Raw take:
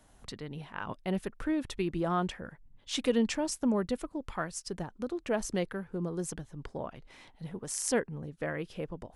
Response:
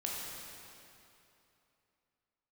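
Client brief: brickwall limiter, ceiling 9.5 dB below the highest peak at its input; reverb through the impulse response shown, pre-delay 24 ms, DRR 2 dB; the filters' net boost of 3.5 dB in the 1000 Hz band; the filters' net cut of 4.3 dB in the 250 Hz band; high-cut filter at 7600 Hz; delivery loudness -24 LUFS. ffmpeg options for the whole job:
-filter_complex "[0:a]lowpass=7.6k,equalizer=f=250:t=o:g=-6,equalizer=f=1k:t=o:g=5,alimiter=level_in=1dB:limit=-24dB:level=0:latency=1,volume=-1dB,asplit=2[a][b];[1:a]atrim=start_sample=2205,adelay=24[c];[b][c]afir=irnorm=-1:irlink=0,volume=-5dB[d];[a][d]amix=inputs=2:normalize=0,volume=12dB"

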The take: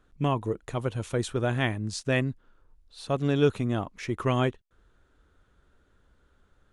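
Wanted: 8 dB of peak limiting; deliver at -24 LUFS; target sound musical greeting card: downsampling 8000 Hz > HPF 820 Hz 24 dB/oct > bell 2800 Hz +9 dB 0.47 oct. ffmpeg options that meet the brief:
-af "alimiter=limit=-19dB:level=0:latency=1,aresample=8000,aresample=44100,highpass=f=820:w=0.5412,highpass=f=820:w=1.3066,equalizer=f=2.8k:t=o:w=0.47:g=9,volume=12.5dB"

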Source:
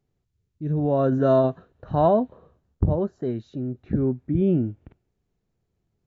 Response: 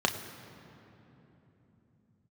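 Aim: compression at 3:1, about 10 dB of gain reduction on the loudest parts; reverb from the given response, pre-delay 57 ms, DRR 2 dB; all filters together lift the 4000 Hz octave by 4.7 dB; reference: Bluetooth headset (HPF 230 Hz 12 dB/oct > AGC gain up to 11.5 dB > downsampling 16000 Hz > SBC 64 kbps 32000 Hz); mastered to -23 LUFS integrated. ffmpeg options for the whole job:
-filter_complex "[0:a]equalizer=f=4k:t=o:g=5.5,acompressor=threshold=-28dB:ratio=3,asplit=2[a][b];[1:a]atrim=start_sample=2205,adelay=57[c];[b][c]afir=irnorm=-1:irlink=0,volume=-13dB[d];[a][d]amix=inputs=2:normalize=0,highpass=230,dynaudnorm=m=11.5dB,aresample=16000,aresample=44100,volume=8.5dB" -ar 32000 -c:a sbc -b:a 64k

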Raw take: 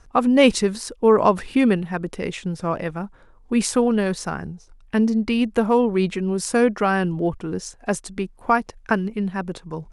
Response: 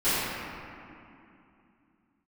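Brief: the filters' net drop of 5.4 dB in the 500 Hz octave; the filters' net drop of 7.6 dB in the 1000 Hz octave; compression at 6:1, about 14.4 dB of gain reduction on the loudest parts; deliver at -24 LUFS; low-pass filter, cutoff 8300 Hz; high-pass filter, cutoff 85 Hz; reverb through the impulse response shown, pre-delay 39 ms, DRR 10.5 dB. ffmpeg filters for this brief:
-filter_complex "[0:a]highpass=85,lowpass=8.3k,equalizer=f=500:t=o:g=-4.5,equalizer=f=1k:t=o:g=-8.5,acompressor=threshold=-30dB:ratio=6,asplit=2[a][b];[1:a]atrim=start_sample=2205,adelay=39[c];[b][c]afir=irnorm=-1:irlink=0,volume=-26.5dB[d];[a][d]amix=inputs=2:normalize=0,volume=10dB"

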